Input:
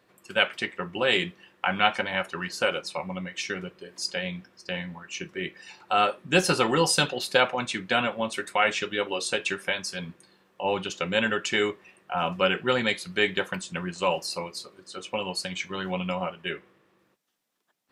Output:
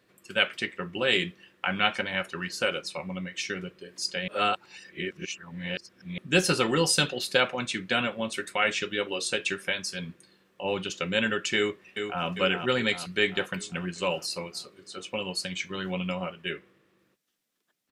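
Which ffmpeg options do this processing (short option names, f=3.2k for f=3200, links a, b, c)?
-filter_complex "[0:a]asplit=2[a][b];[b]afade=t=in:st=11.56:d=0.01,afade=t=out:st=12.25:d=0.01,aecho=0:1:400|800|1200|1600|2000|2400|2800|3200:0.473151|0.283891|0.170334|0.102201|0.0613204|0.0367922|0.0220753|0.0132452[c];[a][c]amix=inputs=2:normalize=0,asplit=3[d][e][f];[d]atrim=end=4.282[g];[e]atrim=start=4.278:end=6.182,asetpts=PTS-STARTPTS,areverse[h];[f]atrim=start=6.178[i];[g][h]acrossfade=d=0.004:c1=hsin:c2=hsin[j];[j][i]acrossfade=d=0.004:c1=hsin:c2=hsin,equalizer=f=860:w=1.4:g=-7.5"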